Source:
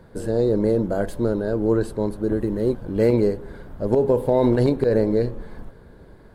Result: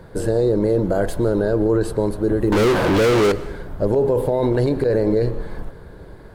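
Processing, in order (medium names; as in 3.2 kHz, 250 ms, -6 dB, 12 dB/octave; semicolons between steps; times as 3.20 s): peaking EQ 230 Hz -8 dB 0.27 oct; peak limiter -17.5 dBFS, peak gain reduction 9.5 dB; 2.52–3.32 s: overdrive pedal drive 36 dB, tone 6.2 kHz, clips at -17.5 dBFS; plate-style reverb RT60 0.76 s, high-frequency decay 0.95×, pre-delay 105 ms, DRR 17.5 dB; trim +7 dB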